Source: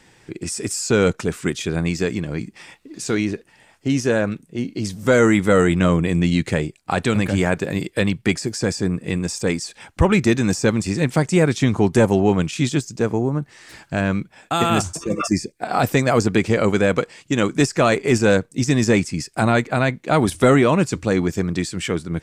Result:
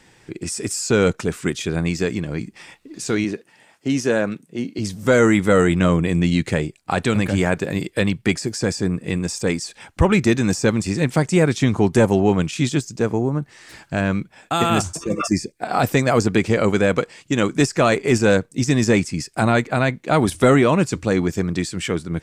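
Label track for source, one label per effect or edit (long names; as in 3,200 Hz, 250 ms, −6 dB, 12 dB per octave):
3.240000	4.790000	high-pass filter 150 Hz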